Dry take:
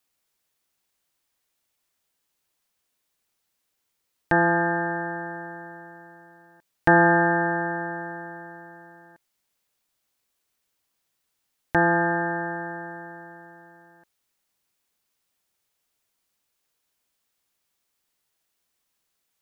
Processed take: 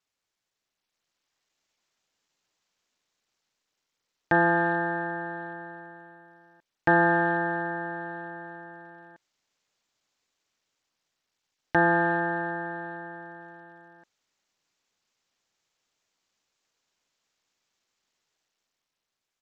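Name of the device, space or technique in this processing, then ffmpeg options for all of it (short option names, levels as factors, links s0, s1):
Bluetooth headset: -af "highpass=f=110:p=1,dynaudnorm=f=190:g=11:m=2.37,aresample=16000,aresample=44100,volume=0.473" -ar 32000 -c:a sbc -b:a 64k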